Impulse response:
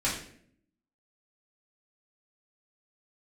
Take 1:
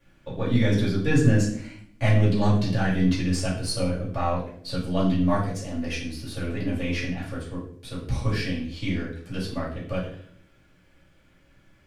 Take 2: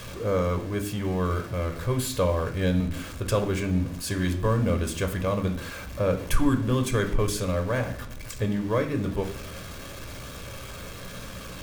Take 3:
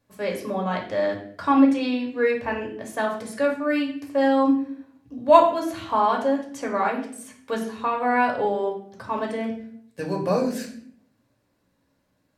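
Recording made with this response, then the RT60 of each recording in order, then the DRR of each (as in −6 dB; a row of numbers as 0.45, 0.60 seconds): 1; 0.60, 0.60, 0.60 seconds; −8.0, 5.5, −0.5 decibels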